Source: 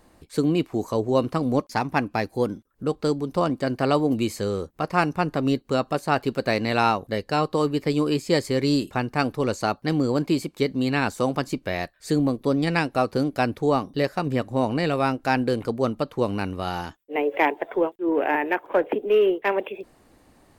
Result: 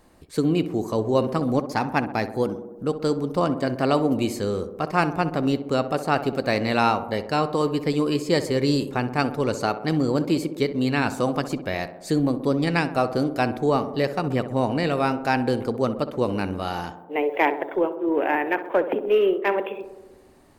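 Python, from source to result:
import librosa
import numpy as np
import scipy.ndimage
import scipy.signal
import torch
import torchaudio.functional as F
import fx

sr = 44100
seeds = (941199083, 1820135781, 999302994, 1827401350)

y = fx.echo_tape(x, sr, ms=64, feedback_pct=82, wet_db=-9.5, lp_hz=1200.0, drive_db=8.0, wow_cents=8)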